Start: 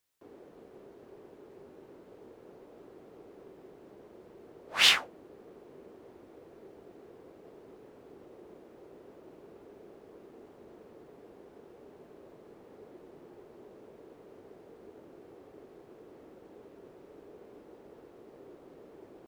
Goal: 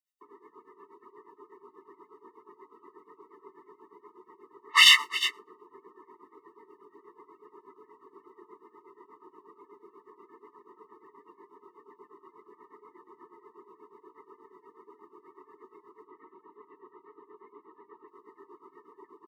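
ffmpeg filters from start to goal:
-filter_complex "[0:a]asettb=1/sr,asplit=3[a][b][c];[a]atrim=end=16.044[d];[b]atrim=start=16.04:end=18.08,asetpts=PTS-STARTPTS,afade=t=in:d=0.004:c=qsin,afade=t=out:st=2.036:d=0.004:c=qsin,lowpass=f=3.7k:w=0.5412,lowpass=f=3.7k:w=1.3066[e];[c]atrim=start=18.076[f];[d][e]acrossfade=d=0.004:c1=hsin:c2=qsin[g];[g][f]acrossfade=d=0.004:c1=qsin:c2=hsin,afftdn=nr=27:nf=-63,highpass=1.2k,acontrast=85,tremolo=f=8.3:d=0.85,aecho=1:1:345:0.0841,alimiter=level_in=18dB:limit=-1dB:release=50:level=0:latency=1,afftfilt=real='re*eq(mod(floor(b*sr/1024/440),2),0)':imag='im*eq(mod(floor(b*sr/1024/440),2),0)':win_size=1024:overlap=0.75,volume=-3dB"

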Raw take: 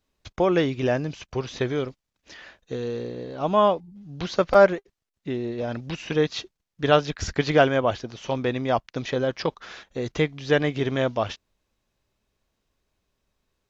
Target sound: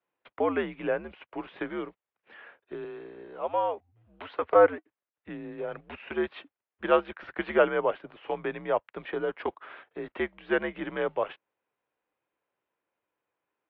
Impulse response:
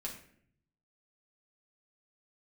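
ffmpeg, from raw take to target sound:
-filter_complex "[0:a]asettb=1/sr,asplit=3[a][b][c];[a]atrim=end=2.844[d];[b]atrim=start=2.84:end=4.42,asetpts=PTS-STARTPTS,afade=t=in:d=0.004:c=qsin,afade=t=out:st=1.576:d=0.004:c=qsin,acrossover=split=240|510[e][f][g];[e]acompressor=threshold=-41dB:ratio=4[h];[f]acompressor=threshold=-44dB:ratio=4[i];[g]acompressor=threshold=-21dB:ratio=4[j];[h][i][j]amix=inputs=3:normalize=0[k];[c]atrim=start=4.416[l];[d][k]acrossfade=d=0.004:c1=hsin:c2=qsin[m];[m][l]acrossfade=d=0.004:c1=qsin:c2=hsin,highpass=f=170:t=q:w=0.5412,highpass=f=170:t=q:w=1.307,lowpass=f=3.4k:t=q:w=0.5176,lowpass=f=3.4k:t=q:w=0.7071,lowpass=f=3.4k:t=q:w=1.932,afreqshift=-88,acrossover=split=350 2400:gain=0.158 1 0.224[n][o][p];[n][o][p]amix=inputs=3:normalize=0,volume=-2dB"

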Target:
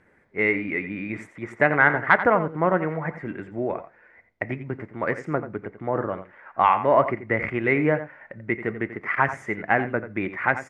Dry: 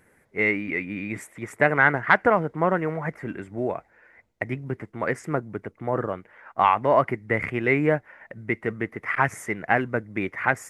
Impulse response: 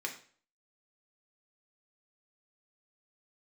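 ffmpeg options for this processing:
-filter_complex "[0:a]lowpass=4.3k,asplit=2[a][b];[b]adelay=87.46,volume=-12dB,highshelf=f=4k:g=-1.97[c];[a][c]amix=inputs=2:normalize=0,asplit=2[d][e];[1:a]atrim=start_sample=2205,asetrate=48510,aresample=44100,lowpass=2.5k[f];[e][f]afir=irnorm=-1:irlink=0,volume=-10.5dB[g];[d][g]amix=inputs=2:normalize=0,volume=-1dB"

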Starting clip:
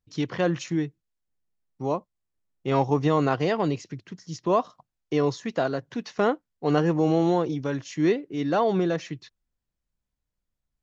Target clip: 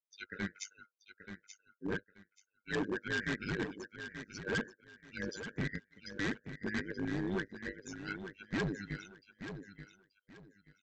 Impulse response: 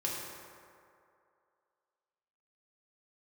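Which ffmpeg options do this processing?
-af "afftfilt=real='real(if(lt(b,1008),b+24*(1-2*mod(floor(b/24),2)),b),0)':imag='imag(if(lt(b,1008),b+24*(1-2*mod(floor(b/24),2)),b),0)':win_size=2048:overlap=0.75,afftdn=nr=32:nf=-36,highpass=200,afftfilt=real='re*(1-between(b*sr/4096,490,1400))':imag='im*(1-between(b*sr/4096,490,1400))':win_size=4096:overlap=0.75,equalizer=f=2.9k:t=o:w=0.48:g=-15,tremolo=f=100:d=0.857,aresample=16000,asoftclip=type=hard:threshold=-34.5dB,aresample=44100,aecho=1:1:881|1762|2643:0.316|0.0791|0.0198,volume=4dB"

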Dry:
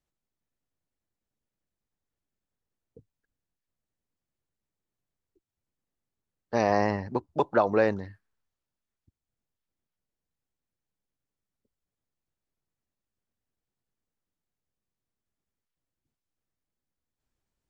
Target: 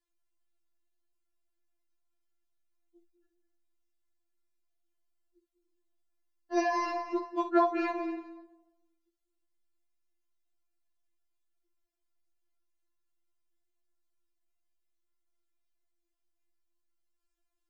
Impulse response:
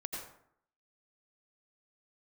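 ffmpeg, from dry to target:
-filter_complex "[0:a]asplit=2[a][b];[1:a]atrim=start_sample=2205,asetrate=26460,aresample=44100,adelay=56[c];[b][c]afir=irnorm=-1:irlink=0,volume=-10dB[d];[a][d]amix=inputs=2:normalize=0,afftfilt=real='re*4*eq(mod(b,16),0)':imag='im*4*eq(mod(b,16),0)':win_size=2048:overlap=0.75"

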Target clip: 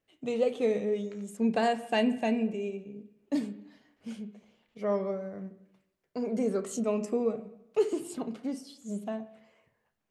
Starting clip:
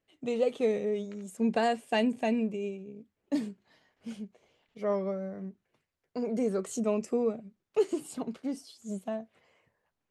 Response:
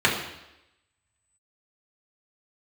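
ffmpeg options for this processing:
-filter_complex "[0:a]asplit=2[a][b];[1:a]atrim=start_sample=2205,lowpass=4k,adelay=28[c];[b][c]afir=irnorm=-1:irlink=0,volume=-28dB[d];[a][d]amix=inputs=2:normalize=0"

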